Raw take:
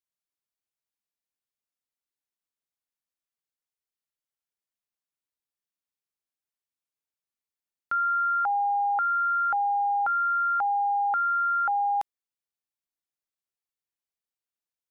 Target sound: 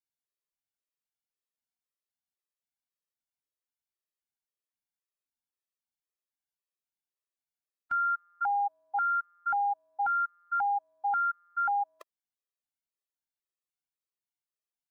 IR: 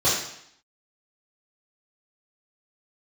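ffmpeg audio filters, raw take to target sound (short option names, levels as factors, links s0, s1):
-af "afftfilt=real='re*gt(sin(2*PI*1.9*pts/sr)*(1-2*mod(floor(b*sr/1024/340),2)),0)':imag='im*gt(sin(2*PI*1.9*pts/sr)*(1-2*mod(floor(b*sr/1024/340),2)),0)':win_size=1024:overlap=0.75,volume=0.75"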